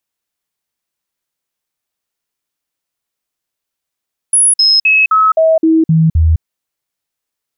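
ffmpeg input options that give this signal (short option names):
-f lavfi -i "aevalsrc='0.501*clip(min(mod(t,0.26),0.21-mod(t,0.26))/0.005,0,1)*sin(2*PI*10300*pow(2,-floor(t/0.26)/1)*mod(t,0.26))':d=2.08:s=44100"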